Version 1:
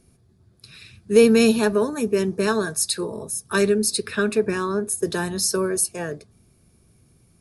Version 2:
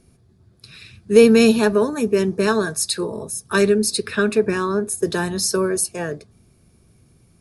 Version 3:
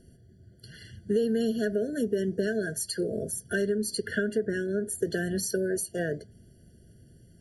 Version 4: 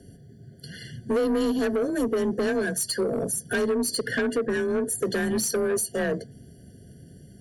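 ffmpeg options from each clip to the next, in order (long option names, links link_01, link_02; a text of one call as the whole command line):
ffmpeg -i in.wav -af "highshelf=frequency=9900:gain=-6.5,volume=3dB" out.wav
ffmpeg -i in.wav -af "acompressor=threshold=-25dB:ratio=5,afftfilt=real='re*eq(mod(floor(b*sr/1024/690),2),0)':imag='im*eq(mod(floor(b*sr/1024/690),2),0)':win_size=1024:overlap=0.75" out.wav
ffmpeg -i in.wav -af "afreqshift=27,asoftclip=type=tanh:threshold=-26.5dB,volume=7dB" out.wav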